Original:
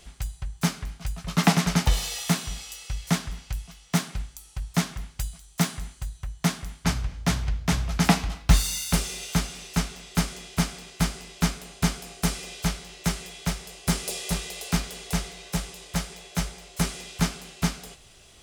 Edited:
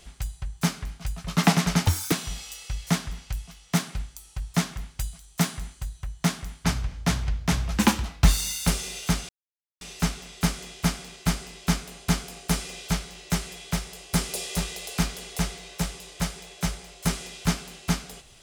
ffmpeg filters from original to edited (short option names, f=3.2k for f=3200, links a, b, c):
-filter_complex "[0:a]asplit=6[a][b][c][d][e][f];[a]atrim=end=1.884[g];[b]atrim=start=1.88:end=2.32,asetpts=PTS-STARTPTS,asetrate=81144,aresample=44100[h];[c]atrim=start=2.316:end=7.974[i];[d]atrim=start=7.97:end=8.31,asetpts=PTS-STARTPTS,asetrate=53361,aresample=44100[j];[e]atrim=start=8.306:end=9.55,asetpts=PTS-STARTPTS,afade=t=out:st=1.24:d=0.004:c=hsin,apad=pad_dur=0.52[k];[f]atrim=start=9.55,asetpts=PTS-STARTPTS,afade=t=in:d=0.004:c=hsin[l];[g][h]acrossfade=d=0.004:c1=hsin:c2=hsin[m];[m][i]acrossfade=d=0.004:c1=hsin:c2=hsin[n];[n][j]acrossfade=d=0.004:c1=hsin:c2=hsin[o];[k][l]concat=n=2:v=0:a=1[p];[o][p]acrossfade=d=0.004:c1=hsin:c2=hsin"